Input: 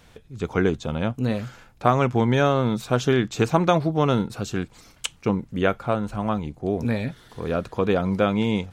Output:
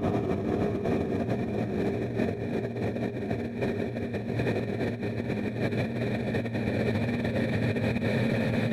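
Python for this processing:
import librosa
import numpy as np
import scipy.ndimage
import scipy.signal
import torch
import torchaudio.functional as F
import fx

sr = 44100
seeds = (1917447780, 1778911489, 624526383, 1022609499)

y = fx.paulstretch(x, sr, seeds[0], factor=19.0, window_s=1.0, from_s=6.63)
y = fx.over_compress(y, sr, threshold_db=-28.0, ratio=-0.5)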